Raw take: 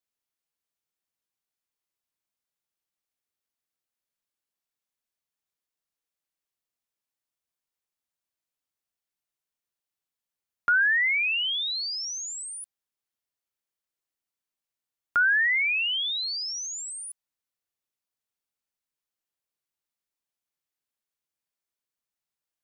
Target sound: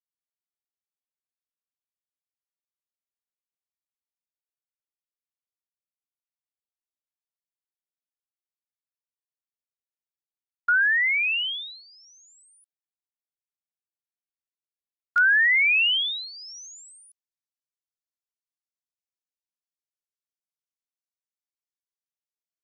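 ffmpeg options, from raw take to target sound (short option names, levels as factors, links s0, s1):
-af "agate=range=0.0708:threshold=0.0398:ratio=16:detection=peak,asetnsamples=n=441:p=0,asendcmd='15.18 equalizer g 14',equalizer=f=5800:w=0.77:g=2,volume=1.12"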